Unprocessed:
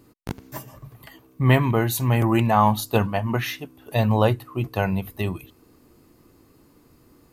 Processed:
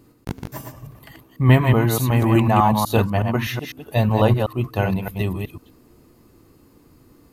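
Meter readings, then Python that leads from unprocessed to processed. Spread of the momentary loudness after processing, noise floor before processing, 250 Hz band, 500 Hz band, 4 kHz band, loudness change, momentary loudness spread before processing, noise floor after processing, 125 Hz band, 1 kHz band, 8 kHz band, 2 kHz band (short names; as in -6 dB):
18 LU, -57 dBFS, +3.0 dB, +2.0 dB, +1.5 dB, +2.5 dB, 18 LU, -54 dBFS, +4.0 dB, +1.5 dB, +1.5 dB, +1.5 dB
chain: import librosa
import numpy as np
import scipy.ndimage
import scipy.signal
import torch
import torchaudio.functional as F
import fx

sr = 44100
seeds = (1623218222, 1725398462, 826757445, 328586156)

y = fx.reverse_delay(x, sr, ms=124, wet_db=-4.5)
y = fx.low_shelf(y, sr, hz=350.0, db=3.0)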